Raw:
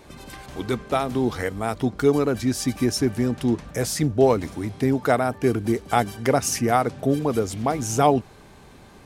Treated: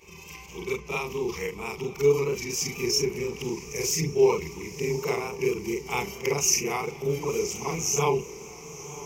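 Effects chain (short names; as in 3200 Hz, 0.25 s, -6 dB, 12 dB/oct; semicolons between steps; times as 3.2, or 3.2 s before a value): short-time reversal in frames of 99 ms; ripple EQ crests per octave 0.77, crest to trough 18 dB; diffused feedback echo 1.014 s, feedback 48%, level -14.5 dB; vibrato 4.4 Hz 34 cents; resonant high shelf 1900 Hz +6.5 dB, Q 1.5; gain -6.5 dB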